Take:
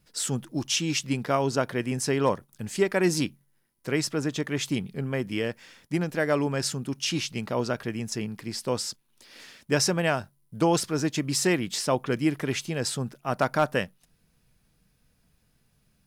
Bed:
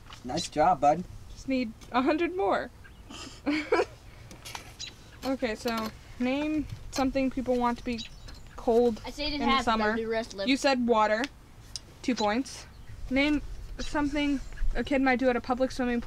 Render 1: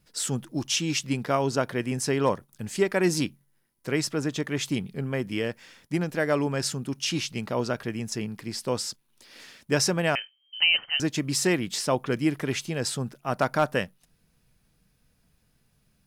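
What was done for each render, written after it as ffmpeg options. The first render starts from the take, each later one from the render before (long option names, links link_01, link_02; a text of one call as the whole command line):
ffmpeg -i in.wav -filter_complex "[0:a]asettb=1/sr,asplit=3[link_01][link_02][link_03];[link_01]atrim=end=10.154[link_04];[link_02]atrim=start=10.15:end=11,asetpts=PTS-STARTPTS,afade=type=in:duration=0.004:curve=qsin,afade=type=out:start_time=0.846:duration=0.004:curve=qsin,lowpass=frequency=2700:width_type=q:width=0.5098,lowpass=frequency=2700:width_type=q:width=0.6013,lowpass=frequency=2700:width_type=q:width=0.9,lowpass=frequency=2700:width_type=q:width=2.563,afreqshift=-3200[link_05];[link_03]atrim=start=10.996[link_06];[link_04][link_05]acrossfade=duration=0.004:curve1=hsin:curve2=qsin[link_07];[link_07][link_06]acrossfade=duration=0.004:curve1=qsin:curve2=hsin" out.wav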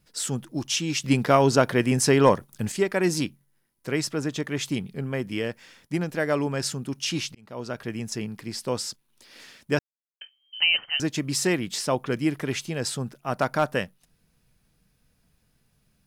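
ffmpeg -i in.wav -filter_complex "[0:a]asettb=1/sr,asplit=3[link_01][link_02][link_03];[link_01]atrim=end=1.044[link_04];[link_02]atrim=start=1.04:end=2.72,asetpts=PTS-STARTPTS,afade=type=in:duration=0.004:curve=qsin,afade=type=out:start_time=1.676:duration=0.004:curve=qsin,acontrast=73[link_05];[link_03]atrim=start=2.716[link_06];[link_04][link_05]acrossfade=duration=0.004:curve1=hsin:curve2=qsin[link_07];[link_07][link_06]acrossfade=duration=0.004:curve1=qsin:curve2=hsin,asplit=4[link_08][link_09][link_10][link_11];[link_08]atrim=end=7.35,asetpts=PTS-STARTPTS,afade=type=out:start_time=7.346:duration=0.004:curve=hsin[link_12];[link_09]atrim=start=7.35:end=9.79,asetpts=PTS-STARTPTS,afade=type=in:duration=0.59,afade=type=out:start_time=2.436:duration=0.004:curve=hsin[link_13];[link_10]atrim=start=9.79:end=10.21,asetpts=PTS-STARTPTS,volume=0[link_14];[link_11]atrim=start=10.21,asetpts=PTS-STARTPTS,afade=type=in:duration=0.004:curve=hsin[link_15];[link_12][link_13][link_14][link_15]concat=n=4:v=0:a=1" out.wav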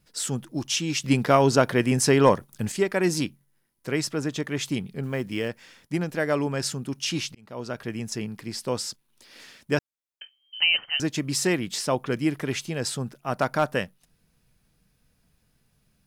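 ffmpeg -i in.wav -filter_complex "[0:a]asettb=1/sr,asplit=3[link_01][link_02][link_03];[link_01]atrim=end=5.034[link_04];[link_02]atrim=start=5.03:end=5.49,asetpts=PTS-STARTPTS,afade=type=in:duration=0.004:curve=qsin,afade=type=out:start_time=0.456:duration=0.004:curve=qsin,acrusher=bits=8:mode=log:mix=0:aa=0.000001[link_05];[link_03]atrim=start=5.486[link_06];[link_04][link_05]acrossfade=duration=0.004:curve1=hsin:curve2=qsin[link_07];[link_07][link_06]acrossfade=duration=0.004:curve1=qsin:curve2=hsin" out.wav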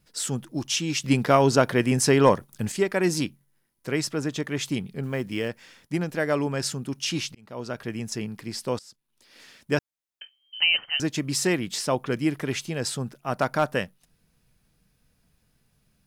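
ffmpeg -i in.wav -filter_complex "[0:a]asplit=2[link_01][link_02];[link_01]atrim=end=8.79,asetpts=PTS-STARTPTS,afade=type=out:start_time=8.786:duration=0.004:curve=hsin:silence=0.0891251[link_03];[link_02]atrim=start=8.79,asetpts=PTS-STARTPTS,afade=type=in:duration=0.94:silence=0.0891251[link_04];[link_03][link_04]concat=n=2:v=0:a=1" out.wav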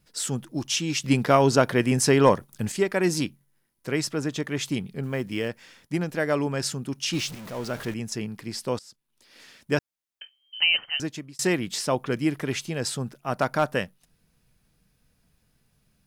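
ffmpeg -i in.wav -filter_complex "[0:a]asettb=1/sr,asplit=3[link_01][link_02][link_03];[link_01]atrim=end=7.134[link_04];[link_02]atrim=start=7.13:end=7.94,asetpts=PTS-STARTPTS,afade=type=in:duration=0.004:curve=qsin,afade=type=out:start_time=0.806:duration=0.004:curve=qsin,aeval=exprs='val(0)+0.5*0.0168*sgn(val(0))':channel_layout=same[link_05];[link_03]atrim=start=7.936[link_06];[link_04][link_05]acrossfade=duration=0.004:curve1=hsin:curve2=qsin[link_07];[link_07][link_06]acrossfade=duration=0.004:curve1=qsin:curve2=hsin,asplit=2[link_08][link_09];[link_08]atrim=end=11.39,asetpts=PTS-STARTPTS,afade=type=out:start_time=10.85:duration=0.54[link_10];[link_09]atrim=start=11.39,asetpts=PTS-STARTPTS,afade=type=in:duration=0.004:curve=hsin[link_11];[link_10][link_11]concat=n=2:v=0:a=1" out.wav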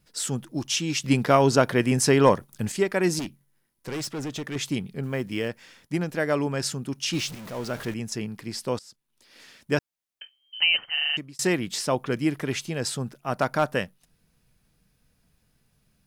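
ffmpeg -i in.wav -filter_complex "[0:a]asettb=1/sr,asplit=3[link_01][link_02][link_03];[link_01]atrim=end=3.194[link_04];[link_02]atrim=start=3.19:end=4.56,asetpts=PTS-STARTPTS,afade=type=in:duration=0.004:curve=qsin,afade=type=out:start_time=1.366:duration=0.004:curve=qsin,asoftclip=type=hard:threshold=-28.5dB[link_05];[link_03]atrim=start=4.556[link_06];[link_04][link_05]acrossfade=duration=0.004:curve1=hsin:curve2=qsin[link_07];[link_07][link_06]acrossfade=duration=0.004:curve1=qsin:curve2=hsin,asplit=7[link_08][link_09][link_10][link_11][link_12][link_13][link_14];[link_08]atrim=end=10.972[link_15];[link_09]atrim=start=10.928:end=10.972[link_16];[link_10]atrim=start=10.928:end=10.972[link_17];[link_11]atrim=start=10.928:end=10.972[link_18];[link_12]atrim=start=10.928:end=10.972[link_19];[link_13]atrim=start=10.928:end=10.972[link_20];[link_14]atrim=start=11.168[link_21];[link_15][link_16]acrossfade=duration=0.004:curve1=hsin:curve2=hsin[link_22];[link_22][link_17]acrossfade=duration=0.004:curve1=hsin:curve2=hsin[link_23];[link_23][link_18]acrossfade=duration=0.004:curve1=hsin:curve2=hsin[link_24];[link_24][link_19]acrossfade=duration=0.004:curve1=hsin:curve2=hsin[link_25];[link_25][link_20]acrossfade=duration=0.004:curve1=hsin:curve2=hsin[link_26];[link_26][link_21]acrossfade=duration=0.004:curve1=hsin:curve2=hsin" out.wav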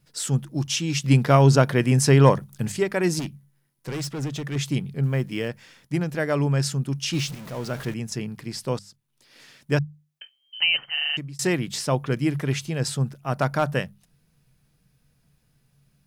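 ffmpeg -i in.wav -af "equalizer=frequency=140:width_type=o:width=0.31:gain=12,bandreject=frequency=50:width_type=h:width=6,bandreject=frequency=100:width_type=h:width=6,bandreject=frequency=150:width_type=h:width=6,bandreject=frequency=200:width_type=h:width=6" out.wav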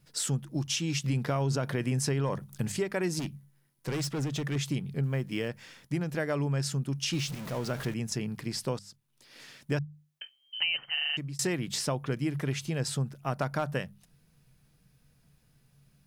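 ffmpeg -i in.wav -af "alimiter=limit=-11.5dB:level=0:latency=1:release=17,acompressor=threshold=-29dB:ratio=3" out.wav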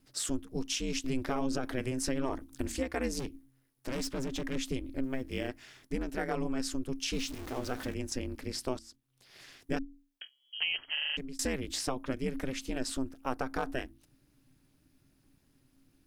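ffmpeg -i in.wav -af "aeval=exprs='val(0)*sin(2*PI*130*n/s)':channel_layout=same" out.wav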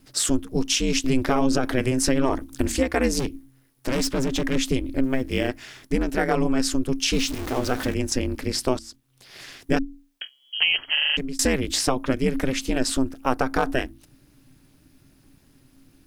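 ffmpeg -i in.wav -af "volume=11.5dB" out.wav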